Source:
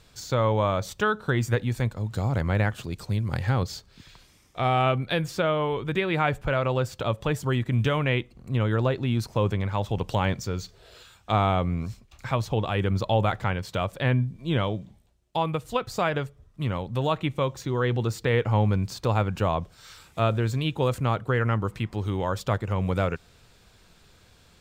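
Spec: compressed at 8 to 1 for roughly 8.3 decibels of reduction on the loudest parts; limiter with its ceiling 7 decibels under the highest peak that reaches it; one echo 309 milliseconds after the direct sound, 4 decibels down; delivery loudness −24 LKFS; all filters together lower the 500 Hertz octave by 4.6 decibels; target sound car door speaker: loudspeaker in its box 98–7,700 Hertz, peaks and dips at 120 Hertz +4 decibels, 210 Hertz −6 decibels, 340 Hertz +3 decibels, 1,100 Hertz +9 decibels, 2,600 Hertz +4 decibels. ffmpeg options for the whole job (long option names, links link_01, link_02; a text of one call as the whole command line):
ffmpeg -i in.wav -af "equalizer=frequency=500:width_type=o:gain=-6.5,acompressor=threshold=-28dB:ratio=8,alimiter=limit=-23.5dB:level=0:latency=1,highpass=98,equalizer=frequency=120:width_type=q:width=4:gain=4,equalizer=frequency=210:width_type=q:width=4:gain=-6,equalizer=frequency=340:width_type=q:width=4:gain=3,equalizer=frequency=1100:width_type=q:width=4:gain=9,equalizer=frequency=2600:width_type=q:width=4:gain=4,lowpass=frequency=7700:width=0.5412,lowpass=frequency=7700:width=1.3066,aecho=1:1:309:0.631,volume=8.5dB" out.wav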